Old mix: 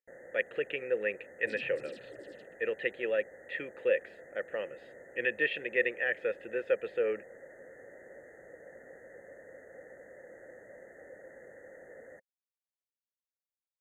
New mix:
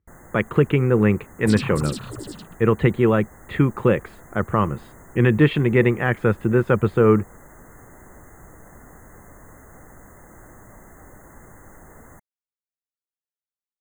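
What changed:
speech: add spectral tilt −4.5 dB per octave
first sound −8.0 dB
master: remove formant filter e

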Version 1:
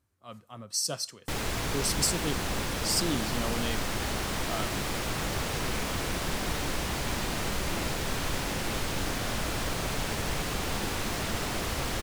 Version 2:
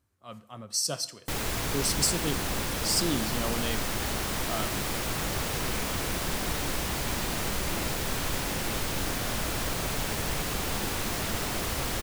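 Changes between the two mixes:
speech: send on
background: add high-shelf EQ 11,000 Hz +9.5 dB

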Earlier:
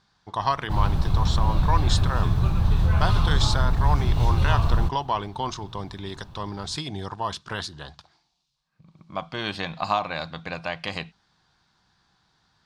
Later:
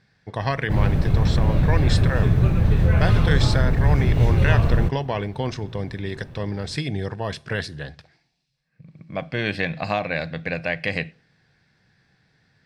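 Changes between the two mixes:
speech: send on
master: add octave-band graphic EQ 125/250/500/1,000/2,000/4,000 Hz +5/+5/+11/−8/+11/−6 dB

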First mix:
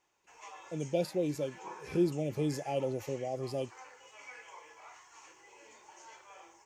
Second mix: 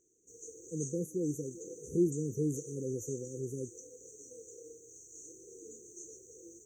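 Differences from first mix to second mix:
background +11.0 dB
master: add linear-phase brick-wall band-stop 510–5,800 Hz

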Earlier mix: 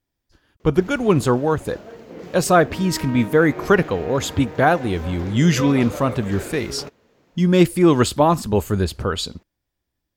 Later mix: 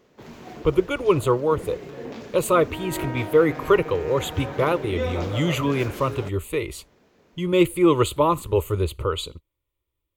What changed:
speech: add phaser with its sweep stopped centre 1,100 Hz, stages 8
first sound: entry −0.60 s

